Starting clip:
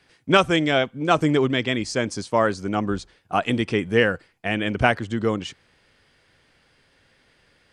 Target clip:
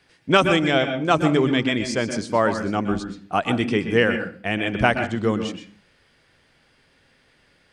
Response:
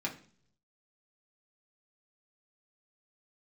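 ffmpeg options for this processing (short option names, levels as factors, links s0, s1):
-filter_complex "[0:a]asplit=2[s0][s1];[1:a]atrim=start_sample=2205,afade=t=out:st=0.37:d=0.01,atrim=end_sample=16758,adelay=122[s2];[s1][s2]afir=irnorm=-1:irlink=0,volume=0.299[s3];[s0][s3]amix=inputs=2:normalize=0"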